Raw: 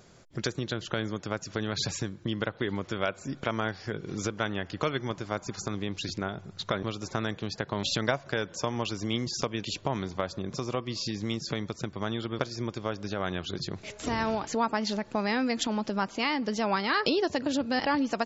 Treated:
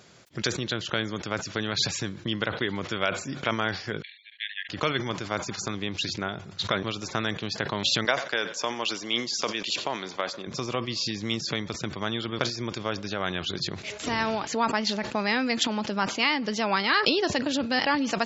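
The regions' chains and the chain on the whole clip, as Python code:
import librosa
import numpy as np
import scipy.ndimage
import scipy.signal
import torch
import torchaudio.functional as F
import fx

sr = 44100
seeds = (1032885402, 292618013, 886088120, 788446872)

y = fx.chain(x, sr, fx.brickwall_bandpass(low_hz=1600.0, high_hz=4400.0),
    fx.upward_expand(threshold_db=-49.0, expansion=2.5), at=(4.02, 4.69))
y = fx.chain(y, sr, fx.bessel_highpass(hz=360.0, order=2),
    fx.echo_feedback(ms=90, feedback_pct=53, wet_db=-23.5), at=(8.05, 10.47))
y = scipy.signal.sosfilt(scipy.signal.butter(2, 85.0, 'highpass', fs=sr, output='sos'), y)
y = fx.peak_eq(y, sr, hz=3000.0, db=7.0, octaves=2.3)
y = fx.sustainer(y, sr, db_per_s=100.0)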